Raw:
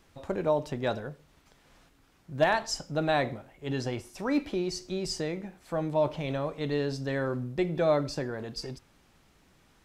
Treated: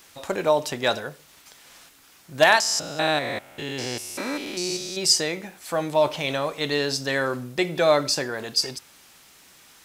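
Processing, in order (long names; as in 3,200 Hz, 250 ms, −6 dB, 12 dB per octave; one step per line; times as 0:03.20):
0:02.60–0:04.98: spectrum averaged block by block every 200 ms
spectral tilt +3.5 dB per octave
level +8.5 dB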